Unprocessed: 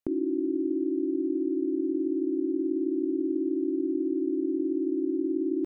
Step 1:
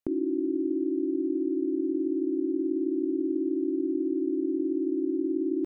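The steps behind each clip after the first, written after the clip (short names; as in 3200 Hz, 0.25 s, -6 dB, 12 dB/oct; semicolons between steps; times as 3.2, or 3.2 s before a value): nothing audible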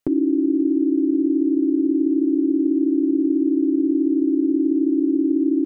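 comb 7 ms, depth 62%; gain +7.5 dB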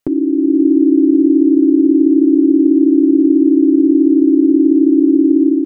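AGC gain up to 5.5 dB; gain +3.5 dB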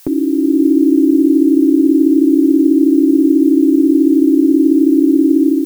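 added noise blue -42 dBFS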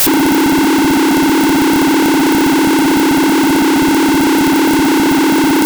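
infinite clipping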